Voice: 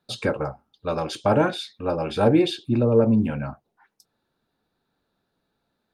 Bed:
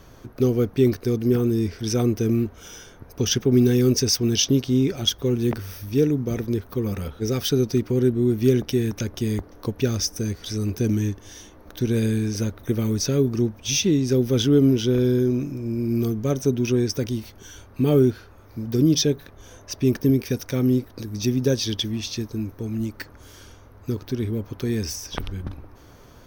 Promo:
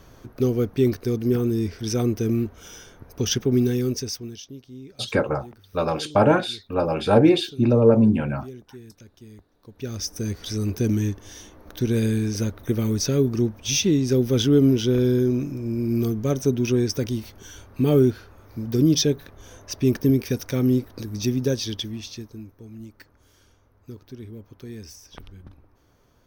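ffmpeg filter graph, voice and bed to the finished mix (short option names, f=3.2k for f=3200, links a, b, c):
-filter_complex "[0:a]adelay=4900,volume=2.5dB[a];[1:a]volume=19.5dB,afade=t=out:st=3.43:d=0.98:silence=0.105925,afade=t=in:st=9.67:d=0.7:silence=0.0891251,afade=t=out:st=21.08:d=1.44:silence=0.223872[b];[a][b]amix=inputs=2:normalize=0"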